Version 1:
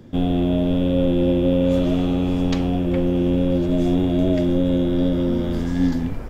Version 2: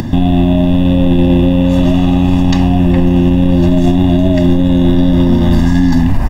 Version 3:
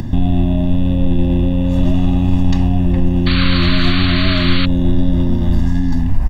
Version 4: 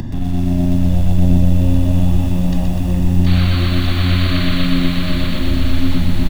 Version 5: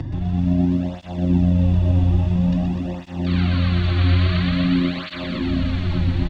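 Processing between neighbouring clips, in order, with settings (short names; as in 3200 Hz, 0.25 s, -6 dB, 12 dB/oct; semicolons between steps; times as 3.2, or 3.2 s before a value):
comb 1.1 ms, depth 83%; upward compressor, threshold -28 dBFS; maximiser +16.5 dB; gain -1 dB
low shelf 110 Hz +12 dB; AGC; painted sound noise, 3.26–4.66, 1000–4600 Hz -19 dBFS; gain -2.5 dB
limiter -11.5 dBFS, peak gain reduction 9.5 dB; bouncing-ball echo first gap 0.72 s, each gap 0.85×, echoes 5; lo-fi delay 0.124 s, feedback 80%, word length 6-bit, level -5 dB; gain -1.5 dB
air absorption 150 m; tape flanging out of phase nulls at 0.49 Hz, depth 5 ms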